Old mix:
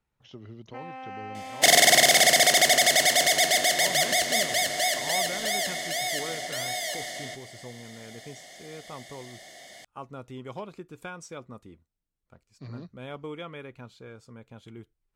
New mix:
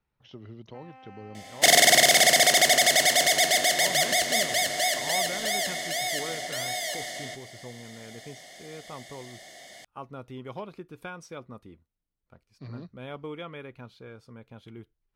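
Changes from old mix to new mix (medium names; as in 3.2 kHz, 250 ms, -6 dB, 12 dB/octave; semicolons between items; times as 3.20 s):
speech: add peaking EQ 7.4 kHz -12 dB 0.41 oct; first sound -10.5 dB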